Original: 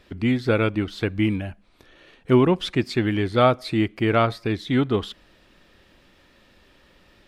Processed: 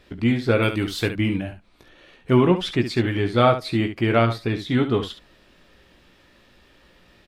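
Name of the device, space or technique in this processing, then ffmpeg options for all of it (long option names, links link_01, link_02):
slapback doubling: -filter_complex "[0:a]asettb=1/sr,asplit=3[link_01][link_02][link_03];[link_01]atrim=end=0.624[link_04];[link_02]atrim=start=0.62:end=1.09,asetpts=PTS-STARTPTS,afade=type=in:duration=0.004:curve=qsin,afade=type=out:start_time=0.466:duration=0.004:curve=qsin,aemphasis=mode=production:type=75kf[link_05];[link_03]atrim=start=1.086[link_06];[link_04][link_05]acrossfade=duration=0.004:curve1=hsin:curve2=qsin[link_07];[link_07][link_06]acrossfade=duration=0.004:curve1=qsin:curve2=hsin,asplit=3[link_08][link_09][link_10];[link_09]adelay=17,volume=-7.5dB[link_11];[link_10]adelay=69,volume=-10dB[link_12];[link_08][link_11][link_12]amix=inputs=3:normalize=0"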